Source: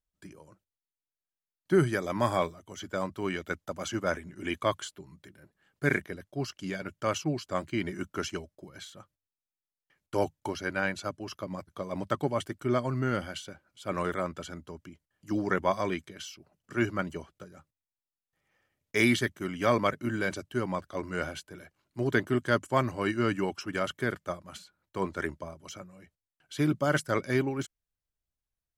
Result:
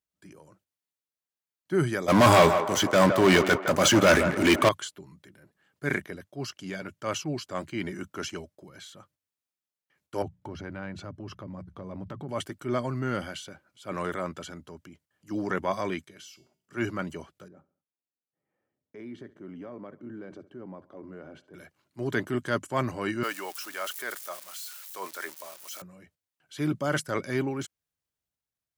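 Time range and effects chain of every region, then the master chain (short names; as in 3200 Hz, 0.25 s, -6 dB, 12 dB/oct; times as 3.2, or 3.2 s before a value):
2.08–4.69 sample leveller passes 5 + narrowing echo 0.162 s, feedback 54%, band-pass 880 Hz, level -9 dB
10.22–12.29 RIAA curve playback + compressor 4:1, threshold -33 dBFS + notches 60/120/180 Hz
16.04–16.73 high shelf 5100 Hz +4.5 dB + notches 60/120/180/240/300/360/420/480 Hz + resonator 130 Hz, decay 0.44 s, harmonics odd
17.48–21.54 compressor 5:1, threshold -35 dBFS + band-pass 310 Hz, Q 0.79 + feedback echo 69 ms, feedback 46%, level -21 dB
23.23–25.82 switching spikes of -33 dBFS + HPF 620 Hz
whole clip: transient shaper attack -4 dB, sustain +3 dB; HPF 95 Hz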